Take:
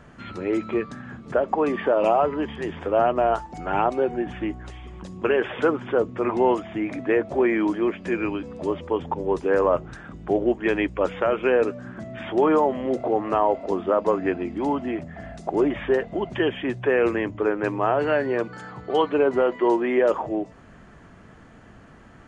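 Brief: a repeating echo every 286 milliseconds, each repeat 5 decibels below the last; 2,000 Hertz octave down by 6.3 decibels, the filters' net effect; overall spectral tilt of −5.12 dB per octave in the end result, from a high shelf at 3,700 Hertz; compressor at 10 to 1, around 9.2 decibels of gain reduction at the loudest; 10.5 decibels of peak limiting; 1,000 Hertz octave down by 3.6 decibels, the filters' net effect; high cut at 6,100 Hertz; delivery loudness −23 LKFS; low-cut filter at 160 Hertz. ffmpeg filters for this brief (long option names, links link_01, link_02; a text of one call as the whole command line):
ffmpeg -i in.wav -af "highpass=160,lowpass=6100,equalizer=frequency=1000:width_type=o:gain=-3.5,equalizer=frequency=2000:width_type=o:gain=-9,highshelf=frequency=3700:gain=7.5,acompressor=threshold=-26dB:ratio=10,alimiter=level_in=2dB:limit=-24dB:level=0:latency=1,volume=-2dB,aecho=1:1:286|572|858|1144|1430|1716|2002:0.562|0.315|0.176|0.0988|0.0553|0.031|0.0173,volume=11dB" out.wav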